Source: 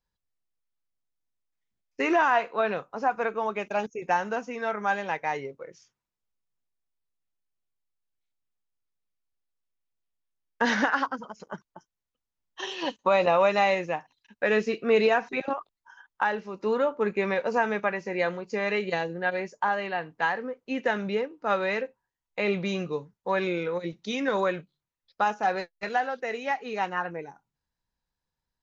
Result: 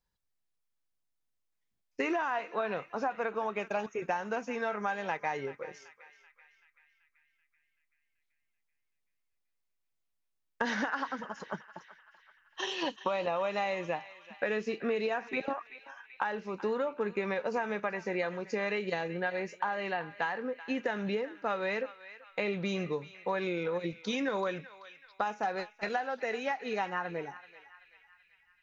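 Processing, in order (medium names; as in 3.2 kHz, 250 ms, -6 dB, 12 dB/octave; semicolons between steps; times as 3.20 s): compression, threshold -29 dBFS, peak gain reduction 12 dB; on a send: band-passed feedback delay 383 ms, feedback 61%, band-pass 2.4 kHz, level -13 dB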